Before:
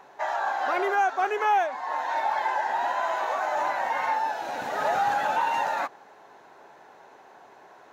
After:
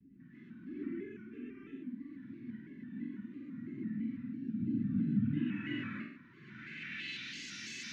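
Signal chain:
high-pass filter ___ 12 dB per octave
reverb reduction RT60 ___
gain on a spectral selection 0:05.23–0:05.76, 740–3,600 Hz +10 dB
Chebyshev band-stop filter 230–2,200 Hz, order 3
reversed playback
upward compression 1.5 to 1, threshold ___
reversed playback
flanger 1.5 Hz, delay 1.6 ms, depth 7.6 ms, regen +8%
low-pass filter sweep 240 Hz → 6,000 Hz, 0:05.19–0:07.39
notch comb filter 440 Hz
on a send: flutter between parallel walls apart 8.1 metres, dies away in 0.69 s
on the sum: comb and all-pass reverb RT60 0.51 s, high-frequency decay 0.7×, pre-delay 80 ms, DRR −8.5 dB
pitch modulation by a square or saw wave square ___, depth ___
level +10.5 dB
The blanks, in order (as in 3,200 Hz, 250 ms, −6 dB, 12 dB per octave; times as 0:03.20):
61 Hz, 1.4 s, −49 dBFS, 3 Hz, 100 cents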